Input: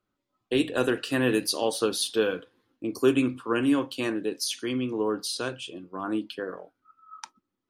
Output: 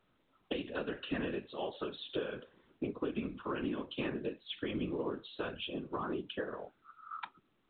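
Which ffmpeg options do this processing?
ffmpeg -i in.wav -af "acompressor=threshold=-36dB:ratio=16,afftfilt=real='hypot(re,im)*cos(2*PI*random(0))':imag='hypot(re,im)*sin(2*PI*random(1))':win_size=512:overlap=0.75,volume=8.5dB" -ar 8000 -c:a pcm_mulaw out.wav

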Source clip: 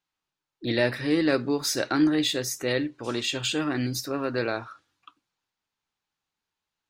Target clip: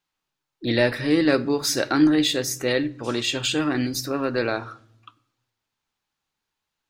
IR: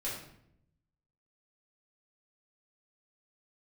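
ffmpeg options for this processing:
-filter_complex "[0:a]asplit=2[link_01][link_02];[1:a]atrim=start_sample=2205,lowshelf=frequency=160:gain=10.5[link_03];[link_02][link_03]afir=irnorm=-1:irlink=0,volume=-20.5dB[link_04];[link_01][link_04]amix=inputs=2:normalize=0,volume=3dB"

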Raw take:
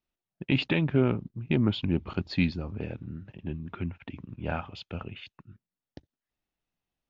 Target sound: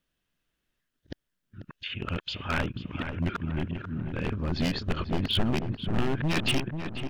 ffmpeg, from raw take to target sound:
ffmpeg -i in.wav -filter_complex "[0:a]areverse,equalizer=frequency=800:width_type=o:width=0.33:gain=-9,equalizer=frequency=1600:width_type=o:width=0.33:gain=7,equalizer=frequency=3150:width_type=o:width=0.33:gain=5,acompressor=threshold=-26dB:ratio=20,aeval=exprs='0.0501*(abs(mod(val(0)/0.0501+3,4)-2)-1)':channel_layout=same,asubboost=boost=3:cutoff=53,asplit=2[link_01][link_02];[link_02]adelay=490,lowpass=frequency=1700:poles=1,volume=-7dB,asplit=2[link_03][link_04];[link_04]adelay=490,lowpass=frequency=1700:poles=1,volume=0.52,asplit=2[link_05][link_06];[link_06]adelay=490,lowpass=frequency=1700:poles=1,volume=0.52,asplit=2[link_07][link_08];[link_08]adelay=490,lowpass=frequency=1700:poles=1,volume=0.52,asplit=2[link_09][link_10];[link_10]adelay=490,lowpass=frequency=1700:poles=1,volume=0.52,asplit=2[link_11][link_12];[link_12]adelay=490,lowpass=frequency=1700:poles=1,volume=0.52[link_13];[link_03][link_05][link_07][link_09][link_11][link_13]amix=inputs=6:normalize=0[link_14];[link_01][link_14]amix=inputs=2:normalize=0,volume=6.5dB" out.wav

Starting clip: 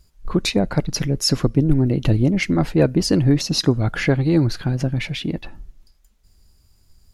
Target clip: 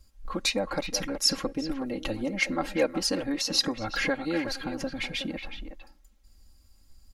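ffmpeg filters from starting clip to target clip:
ffmpeg -i in.wav -filter_complex "[0:a]aecho=1:1:3.7:0.92,acrossover=split=470[link_01][link_02];[link_01]acompressor=threshold=-28dB:ratio=6[link_03];[link_03][link_02]amix=inputs=2:normalize=0,asplit=2[link_04][link_05];[link_05]adelay=370,highpass=300,lowpass=3400,asoftclip=type=hard:threshold=-16.5dB,volume=-8dB[link_06];[link_04][link_06]amix=inputs=2:normalize=0,volume=-6dB" out.wav

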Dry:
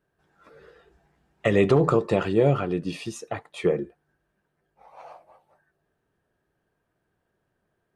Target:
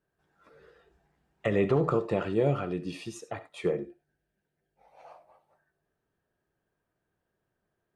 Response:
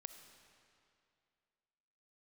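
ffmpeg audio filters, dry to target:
-filter_complex "[0:a]asettb=1/sr,asplit=3[link_01][link_02][link_03];[link_01]atrim=end=1.464[link_04];[link_02]atrim=start=1.46:end=2.33,asetpts=PTS-STARTPTS,afade=type=in:duration=0.004:curve=qsin,afade=type=out:start_time=0.866:duration=0.004:curve=qsin,acrossover=split=3000[link_05][link_06];[link_06]acompressor=threshold=-48dB:ratio=4:attack=1:release=60[link_07];[link_05][link_07]amix=inputs=2:normalize=0[link_08];[link_03]atrim=start=2.326[link_09];[link_04][link_08]acrossfade=duration=0.004:curve1=hsin:curve2=qsin[link_10];[link_10][link_09]acrossfade=duration=0.004:curve1=qsin:curve2=hsin,asettb=1/sr,asplit=3[link_11][link_12][link_13];[link_11]atrim=end=3.754[link_14];[link_12]atrim=start=3.75:end=5.05,asetpts=PTS-STARTPTS,afade=type=in:duration=0.004:curve=qsin,afade=type=out:start_time=1.296:duration=0.004:curve=qsin,equalizer=frequency=1100:width=3.1:gain=-13.5[link_15];[link_13]atrim=start=5.046[link_16];[link_14][link_15]acrossfade=duration=0.004:curve1=hsin:curve2=qsin[link_17];[link_17][link_16]acrossfade=duration=0.004:curve1=qsin:curve2=hsin[link_18];[1:a]atrim=start_sample=2205,atrim=end_sample=4410[link_19];[link_18][link_19]afir=irnorm=-1:irlink=0"

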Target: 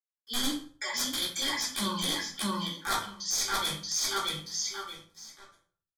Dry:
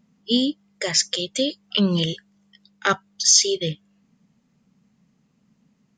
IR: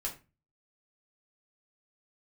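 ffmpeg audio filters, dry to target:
-filter_complex "[0:a]highpass=96,lowshelf=frequency=700:width_type=q:width=3:gain=-10.5,aecho=1:1:3.5:0.41,asplit=2[link_01][link_02];[link_02]adelay=630,lowpass=frequency=4900:poles=1,volume=-3.5dB,asplit=2[link_03][link_04];[link_04]adelay=630,lowpass=frequency=4900:poles=1,volume=0.26,asplit=2[link_05][link_06];[link_06]adelay=630,lowpass=frequency=4900:poles=1,volume=0.26,asplit=2[link_07][link_08];[link_08]adelay=630,lowpass=frequency=4900:poles=1,volume=0.26[link_09];[link_01][link_03][link_05][link_07][link_09]amix=inputs=5:normalize=0,acrusher=bits=7:mix=0:aa=0.5,areverse,acompressor=threshold=-31dB:ratio=12,areverse,aeval=exprs='(mod(17.8*val(0)+1,2)-1)/17.8':channel_layout=same,asuperstop=centerf=2800:order=8:qfactor=5.3[link_10];[1:a]atrim=start_sample=2205,asetrate=26901,aresample=44100[link_11];[link_10][link_11]afir=irnorm=-1:irlink=0"

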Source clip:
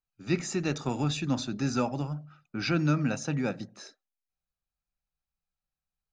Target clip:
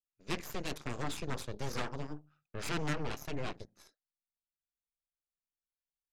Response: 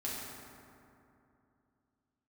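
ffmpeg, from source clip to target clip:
-af "aeval=exprs='0.188*(cos(1*acos(clip(val(0)/0.188,-1,1)))-cos(1*PI/2))+0.0944*(cos(3*acos(clip(val(0)/0.188,-1,1)))-cos(3*PI/2))+0.0266*(cos(5*acos(clip(val(0)/0.188,-1,1)))-cos(5*PI/2))+0.00168*(cos(7*acos(clip(val(0)/0.188,-1,1)))-cos(7*PI/2))+0.0188*(cos(8*acos(clip(val(0)/0.188,-1,1)))-cos(8*PI/2))':channel_layout=same,asoftclip=type=tanh:threshold=-23.5dB"

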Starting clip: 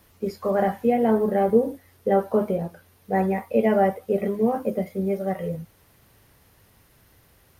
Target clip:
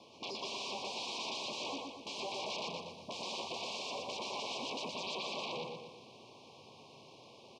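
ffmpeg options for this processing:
ffmpeg -i in.wav -filter_complex "[0:a]asettb=1/sr,asplit=3[link_01][link_02][link_03];[link_01]atrim=end=2.624[link_04];[link_02]atrim=start=2.62:end=5.03,asetpts=PTS-STARTPTS,afade=type=in:duration=0.004:curve=qsin,afade=type=out:start_time=2.406:duration=0.004:curve=qsin,bass=frequency=250:gain=9,treble=frequency=4000:gain=5[link_05];[link_03]atrim=start=5.026[link_06];[link_04][link_05]acrossfade=duration=0.004:curve1=hsin:curve2=qsin[link_07];[link_07][link_06]acrossfade=duration=0.004:curve1=qsin:curve2=hsin,aeval=exprs='(tanh(3.55*val(0)+0.8)-tanh(0.8))/3.55':channel_layout=same,aeval=exprs='0.0251*sin(PI/2*3.55*val(0)/0.0251)':channel_layout=same,asuperstop=centerf=1600:order=20:qfactor=1.4,highpass=frequency=170:width=0.5412,highpass=frequency=170:width=1.3066,equalizer=frequency=180:width_type=q:width=4:gain=-10,equalizer=frequency=300:width_type=q:width=4:gain=-5,equalizer=frequency=1900:width_type=q:width=4:gain=-7,lowpass=frequency=5300:width=0.5412,lowpass=frequency=5300:width=1.3066,aecho=1:1:120|240|360|480|600|720:0.708|0.34|0.163|0.0783|0.0376|0.018,volume=-4dB" out.wav

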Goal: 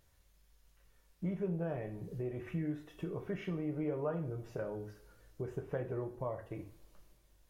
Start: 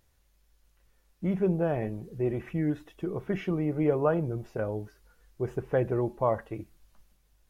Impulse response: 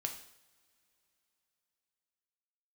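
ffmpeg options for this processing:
-filter_complex "[0:a]asettb=1/sr,asplit=3[link_01][link_02][link_03];[link_01]atrim=end=6.044[link_04];[link_02]atrim=start=6.04:end=6.52,asetpts=PTS-STARTPTS,afade=type=in:duration=0.004:curve=qsin,afade=type=out:start_time=0.476:duration=0.004:curve=qsin,equalizer=frequency=1300:width=0.34:gain=-5.5[link_05];[link_03]atrim=start=6.516[link_06];[link_04][link_05]acrossfade=duration=0.004:curve1=hsin:curve2=qsin[link_07];[link_07][link_06]acrossfade=duration=0.004:curve1=qsin:curve2=hsin,acompressor=threshold=-39dB:ratio=2.5[link_08];[1:a]atrim=start_sample=2205,asetrate=66150,aresample=44100[link_09];[link_08][link_09]afir=irnorm=-1:irlink=0,volume=3.5dB"

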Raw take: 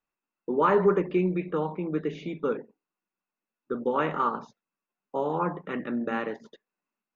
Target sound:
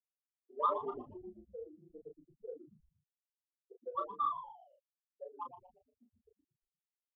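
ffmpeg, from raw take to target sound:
ffmpeg -i in.wav -filter_complex "[0:a]bandreject=frequency=60:width_type=h:width=6,bandreject=frequency=120:width_type=h:width=6,bandreject=frequency=180:width_type=h:width=6,bandreject=frequency=240:width_type=h:width=6,bandreject=frequency=300:width_type=h:width=6,bandreject=frequency=360:width_type=h:width=6,bandreject=frequency=420:width_type=h:width=6,bandreject=frequency=480:width_type=h:width=6,bandreject=frequency=540:width_type=h:width=6,afftfilt=real='re*gte(hypot(re,im),0.316)':imag='im*gte(hypot(re,im),0.316)':win_size=1024:overlap=0.75,afftdn=noise_reduction=22:noise_floor=-45,asplit=3[link_01][link_02][link_03];[link_01]bandpass=frequency=730:width_type=q:width=8,volume=0dB[link_04];[link_02]bandpass=frequency=1090:width_type=q:width=8,volume=-6dB[link_05];[link_03]bandpass=frequency=2440:width_type=q:width=8,volume=-9dB[link_06];[link_04][link_05][link_06]amix=inputs=3:normalize=0,acrossover=split=440 2700:gain=0.2 1 0.112[link_07][link_08][link_09];[link_07][link_08][link_09]amix=inputs=3:normalize=0,adynamicsmooth=sensitivity=6.5:basefreq=3000,aeval=exprs='0.0708*(cos(1*acos(clip(val(0)/0.0708,-1,1)))-cos(1*PI/2))+0.000501*(cos(7*acos(clip(val(0)/0.0708,-1,1)))-cos(7*PI/2))':channel_layout=same,asplit=2[link_10][link_11];[link_11]adelay=33,volume=-5dB[link_12];[link_10][link_12]amix=inputs=2:normalize=0,asplit=5[link_13][link_14][link_15][link_16][link_17];[link_14]adelay=117,afreqshift=-150,volume=-11.5dB[link_18];[link_15]adelay=234,afreqshift=-300,volume=-19.5dB[link_19];[link_16]adelay=351,afreqshift=-450,volume=-27.4dB[link_20];[link_17]adelay=468,afreqshift=-600,volume=-35.4dB[link_21];[link_13][link_18][link_19][link_20][link_21]amix=inputs=5:normalize=0,aresample=11025,aresample=44100,volume=4dB" out.wav

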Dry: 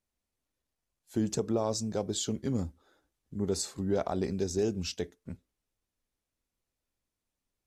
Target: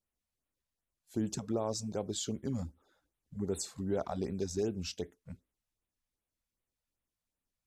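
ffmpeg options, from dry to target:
ffmpeg -i in.wav -af "afftfilt=real='re*(1-between(b*sr/1024,300*pow(6000/300,0.5+0.5*sin(2*PI*2.6*pts/sr))/1.41,300*pow(6000/300,0.5+0.5*sin(2*PI*2.6*pts/sr))*1.41))':imag='im*(1-between(b*sr/1024,300*pow(6000/300,0.5+0.5*sin(2*PI*2.6*pts/sr))/1.41,300*pow(6000/300,0.5+0.5*sin(2*PI*2.6*pts/sr))*1.41))':win_size=1024:overlap=0.75,volume=-4dB" out.wav

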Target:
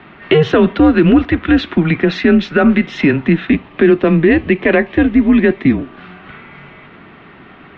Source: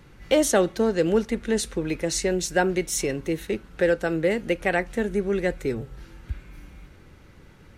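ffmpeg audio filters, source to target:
ffmpeg -i in.wav -filter_complex "[0:a]highpass=frequency=310:width_type=q:width=0.5412,highpass=frequency=310:width_type=q:width=1.307,lowpass=frequency=3400:width_type=q:width=0.5176,lowpass=frequency=3400:width_type=q:width=0.7071,lowpass=frequency=3400:width_type=q:width=1.932,afreqshift=-150,asettb=1/sr,asplit=3[link_01][link_02][link_03];[link_01]atrim=end=3.504[link_04];[link_02]atrim=start=3.5:end=5.79,asetpts=PTS-STARTPTS,afade=type=in:duration=0.004:curve=qsin,afade=type=out:start_time=2.286:duration=0.004:curve=qsin,equalizer=frequency=1400:width=6.6:gain=-14.5[link_05];[link_03]atrim=start=5.786[link_06];[link_04][link_05]acrossfade=duration=0.004:curve1=hsin:curve2=qsin[link_07];[link_07][link_06]acrossfade=duration=0.004:curve1=qsin:curve2=hsin,alimiter=level_in=18.5dB:limit=-1dB:release=50:level=0:latency=1,volume=-1dB" out.wav

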